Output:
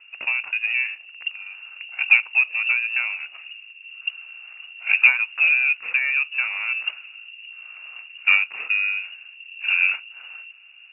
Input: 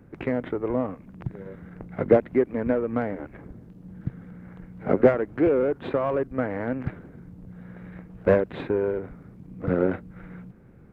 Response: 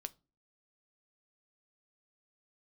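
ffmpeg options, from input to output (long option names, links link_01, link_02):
-filter_complex "[0:a]lowpass=frequency=2500:width_type=q:width=0.5098,lowpass=frequency=2500:width_type=q:width=0.6013,lowpass=frequency=2500:width_type=q:width=0.9,lowpass=frequency=2500:width_type=q:width=2.563,afreqshift=-2900,asplit=2[link_01][link_02];[link_02]highshelf=frequency=2100:gain=11[link_03];[1:a]atrim=start_sample=2205[link_04];[link_03][link_04]afir=irnorm=-1:irlink=0,volume=9.5dB[link_05];[link_01][link_05]amix=inputs=2:normalize=0,volume=-11.5dB"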